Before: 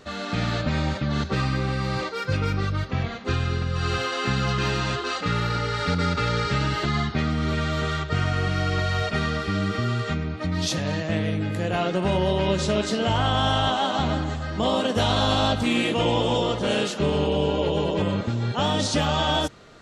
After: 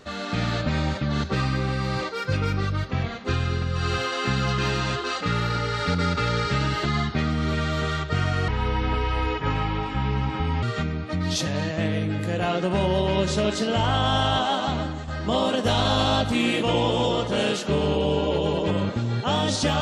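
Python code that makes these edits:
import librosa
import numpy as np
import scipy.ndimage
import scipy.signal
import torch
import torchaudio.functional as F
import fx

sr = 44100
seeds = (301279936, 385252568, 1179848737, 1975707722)

y = fx.edit(x, sr, fx.speed_span(start_s=8.48, length_s=1.46, speed=0.68),
    fx.fade_out_to(start_s=13.83, length_s=0.56, floor_db=-6.5), tone=tone)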